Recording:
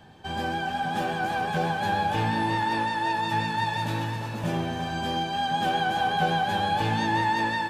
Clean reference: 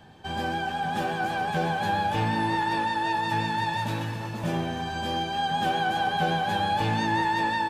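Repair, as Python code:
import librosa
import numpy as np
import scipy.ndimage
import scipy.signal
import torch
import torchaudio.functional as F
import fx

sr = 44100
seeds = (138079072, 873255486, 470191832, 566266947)

y = fx.fix_echo_inverse(x, sr, delay_ms=356, level_db=-10.0)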